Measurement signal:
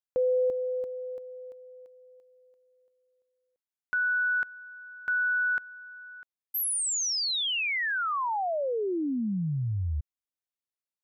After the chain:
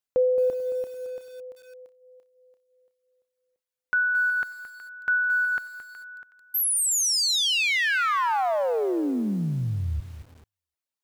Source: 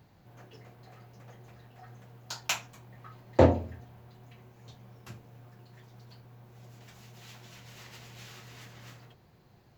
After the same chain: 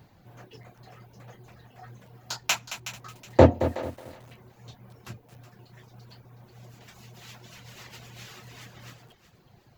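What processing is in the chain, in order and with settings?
reverb removal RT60 0.88 s; on a send: thinning echo 370 ms, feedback 26%, high-pass 1.1 kHz, level -12 dB; on the sum: bit-crushed delay 221 ms, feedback 35%, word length 8-bit, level -11.5 dB; trim +5 dB

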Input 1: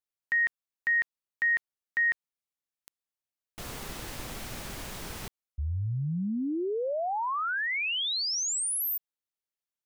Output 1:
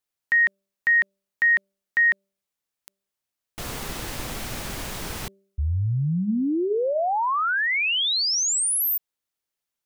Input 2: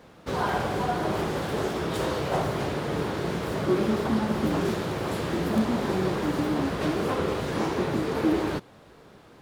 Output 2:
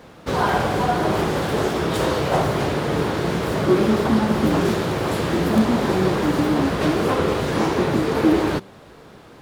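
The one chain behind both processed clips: de-hum 195.6 Hz, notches 3; trim +7 dB

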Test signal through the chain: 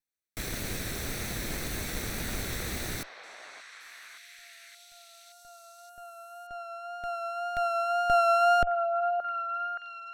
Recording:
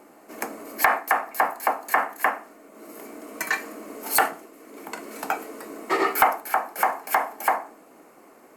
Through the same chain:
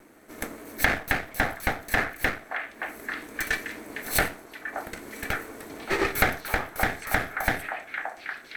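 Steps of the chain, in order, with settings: comb filter that takes the minimum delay 0.51 ms; vibrato 1.9 Hz 27 cents; repeats whose band climbs or falls 573 ms, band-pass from 860 Hz, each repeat 0.7 oct, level -3.5 dB; trim -1.5 dB

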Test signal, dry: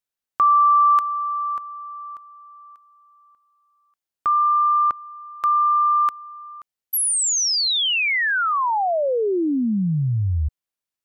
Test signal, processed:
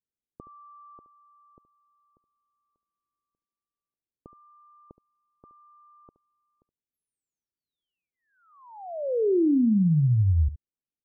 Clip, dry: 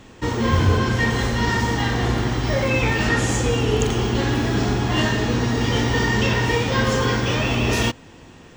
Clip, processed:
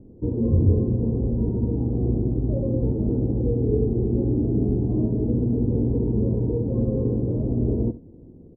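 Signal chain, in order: inverse Chebyshev low-pass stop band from 2 kHz, stop band 70 dB; on a send: delay 71 ms -15.5 dB

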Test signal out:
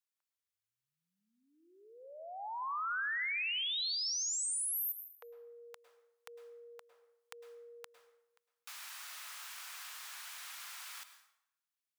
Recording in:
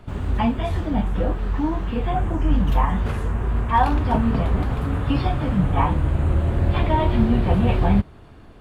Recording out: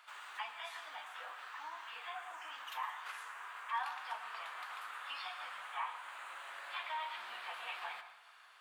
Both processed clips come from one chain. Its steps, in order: high-pass 1.1 kHz 24 dB/octave; compression 1.5:1, threshold -50 dBFS; plate-style reverb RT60 0.79 s, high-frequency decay 0.75×, pre-delay 95 ms, DRR 10 dB; trim -2.5 dB

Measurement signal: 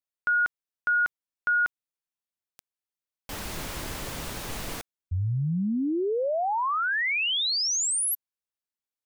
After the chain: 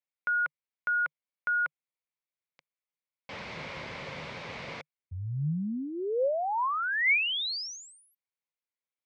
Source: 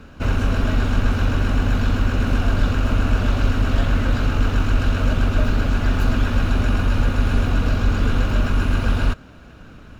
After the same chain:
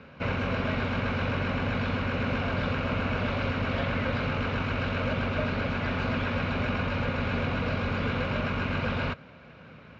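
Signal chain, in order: cabinet simulation 110–4700 Hz, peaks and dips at 150 Hz +5 dB, 310 Hz -6 dB, 530 Hz +7 dB, 1 kHz +4 dB, 2.2 kHz +10 dB; trim -5.5 dB

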